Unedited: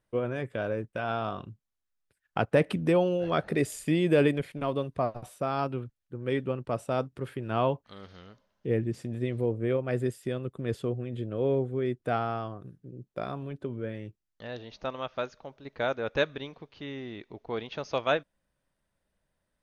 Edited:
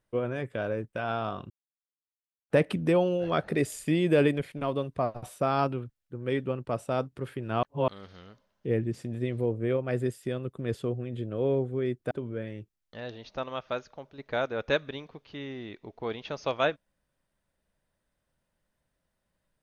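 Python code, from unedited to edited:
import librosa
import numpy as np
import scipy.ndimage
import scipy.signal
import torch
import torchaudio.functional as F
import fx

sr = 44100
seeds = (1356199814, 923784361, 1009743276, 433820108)

y = fx.edit(x, sr, fx.silence(start_s=1.5, length_s=1.0),
    fx.clip_gain(start_s=5.23, length_s=0.5, db=3.5),
    fx.reverse_span(start_s=7.63, length_s=0.25),
    fx.cut(start_s=12.11, length_s=1.47), tone=tone)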